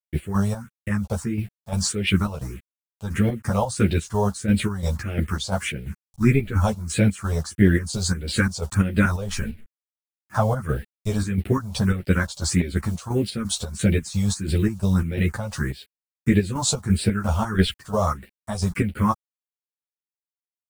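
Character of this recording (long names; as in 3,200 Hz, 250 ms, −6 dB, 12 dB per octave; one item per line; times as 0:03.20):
a quantiser's noise floor 8 bits, dither none
phaser sweep stages 4, 1.6 Hz, lowest notch 300–1,100 Hz
chopped level 2.9 Hz, depth 60%, duty 55%
a shimmering, thickened sound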